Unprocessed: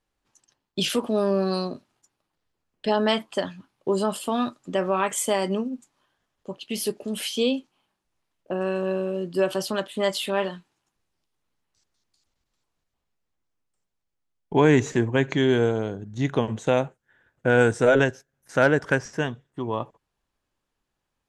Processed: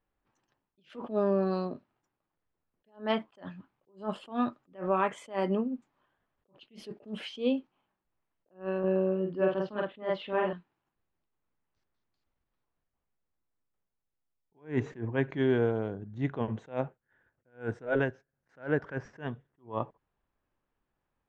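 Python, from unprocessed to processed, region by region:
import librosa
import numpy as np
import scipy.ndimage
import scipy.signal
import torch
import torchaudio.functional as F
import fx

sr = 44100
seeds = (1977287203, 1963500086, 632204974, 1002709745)

y = fx.chain(x, sr, fx.lowpass(hz=3000.0, slope=12),
    fx.doubler(ms=48.0, db=-2.5), at=(8.79, 10.53))
y = scipy.signal.sosfilt(scipy.signal.butter(2, 2100.0, 'lowpass', fs=sr, output='sos'), y)
y = fx.rider(y, sr, range_db=4, speed_s=2.0)
y = fx.attack_slew(y, sr, db_per_s=210.0)
y = y * 10.0 ** (-5.0 / 20.0)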